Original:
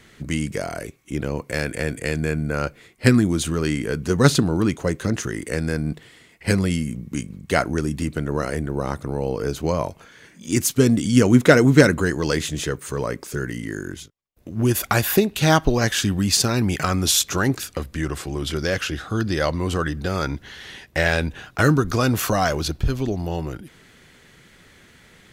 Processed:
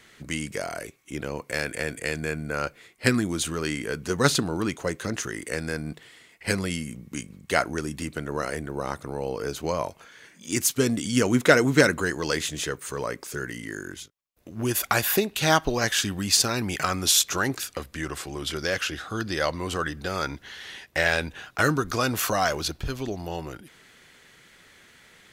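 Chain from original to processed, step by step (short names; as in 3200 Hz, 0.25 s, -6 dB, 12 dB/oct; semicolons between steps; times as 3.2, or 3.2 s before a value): low shelf 360 Hz -10 dB; gain -1 dB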